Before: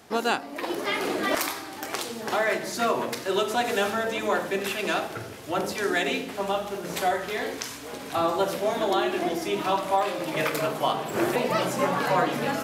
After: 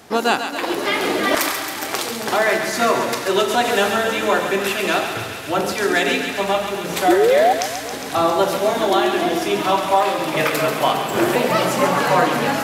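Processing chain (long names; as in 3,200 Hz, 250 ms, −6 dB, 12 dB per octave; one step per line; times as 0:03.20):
sound drawn into the spectrogram rise, 0:07.08–0:07.53, 320–800 Hz −21 dBFS
feedback echo with a high-pass in the loop 136 ms, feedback 78%, high-pass 730 Hz, level −7 dB
level +7 dB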